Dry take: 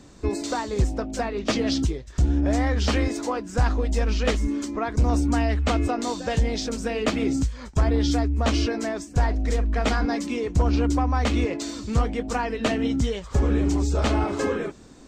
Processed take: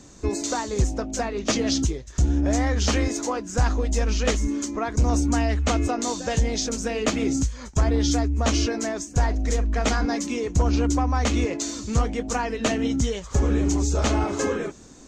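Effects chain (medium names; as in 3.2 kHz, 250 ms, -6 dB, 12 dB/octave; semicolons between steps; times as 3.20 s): peaking EQ 6.5 kHz +10.5 dB 0.43 oct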